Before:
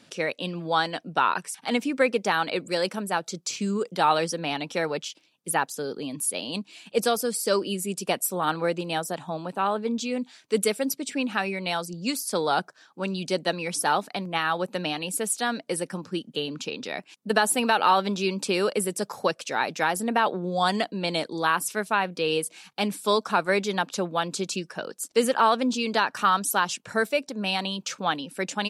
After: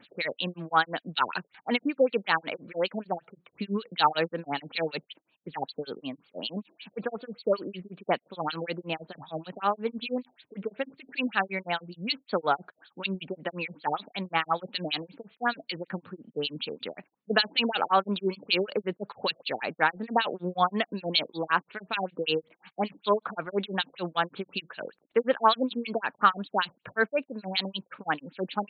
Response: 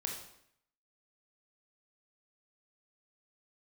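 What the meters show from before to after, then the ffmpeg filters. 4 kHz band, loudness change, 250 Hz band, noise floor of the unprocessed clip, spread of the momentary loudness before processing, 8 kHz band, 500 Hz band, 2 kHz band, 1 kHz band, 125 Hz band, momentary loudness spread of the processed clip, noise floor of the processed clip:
-1.5 dB, -3.5 dB, -4.5 dB, -61 dBFS, 9 LU, under -40 dB, -4.0 dB, -3.0 dB, -3.5 dB, -4.5 dB, 12 LU, -75 dBFS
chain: -filter_complex "[0:a]crystalizer=i=6:c=0,acrossover=split=2300[a][b];[a]aeval=exprs='val(0)*(1-1/2+1/2*cos(2*PI*6.4*n/s))':c=same[c];[b]aeval=exprs='val(0)*(1-1/2-1/2*cos(2*PI*6.4*n/s))':c=same[d];[c][d]amix=inputs=2:normalize=0,afftfilt=real='re*lt(b*sr/1024,730*pow(4600/730,0.5+0.5*sin(2*PI*5.3*pts/sr)))':imag='im*lt(b*sr/1024,730*pow(4600/730,0.5+0.5*sin(2*PI*5.3*pts/sr)))':win_size=1024:overlap=0.75"

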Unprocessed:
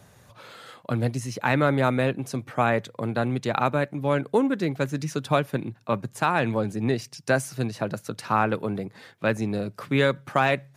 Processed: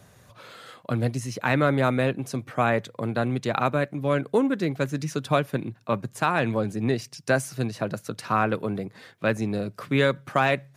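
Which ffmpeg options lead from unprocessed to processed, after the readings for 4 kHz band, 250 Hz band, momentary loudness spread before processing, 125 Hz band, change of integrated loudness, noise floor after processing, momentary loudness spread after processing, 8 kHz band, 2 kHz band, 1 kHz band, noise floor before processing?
0.0 dB, 0.0 dB, 8 LU, 0.0 dB, 0.0 dB, -57 dBFS, 8 LU, 0.0 dB, 0.0 dB, -1.0 dB, -57 dBFS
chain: -af "bandreject=f=860:w=15"

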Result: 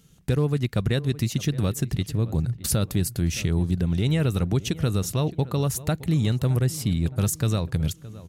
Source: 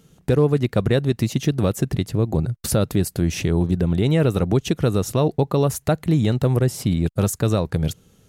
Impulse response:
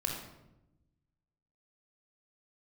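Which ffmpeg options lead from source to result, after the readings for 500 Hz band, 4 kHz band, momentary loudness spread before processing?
-9.0 dB, -1.0 dB, 4 LU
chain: -filter_complex "[0:a]equalizer=f=540:w=0.43:g=-9.5,asplit=2[a][b];[b]adelay=617,lowpass=f=1.8k:p=1,volume=-17dB,asplit=2[c][d];[d]adelay=617,lowpass=f=1.8k:p=1,volume=0.44,asplit=2[e][f];[f]adelay=617,lowpass=f=1.8k:p=1,volume=0.44,asplit=2[g][h];[h]adelay=617,lowpass=f=1.8k:p=1,volume=0.44[i];[c][e][g][i]amix=inputs=4:normalize=0[j];[a][j]amix=inputs=2:normalize=0"

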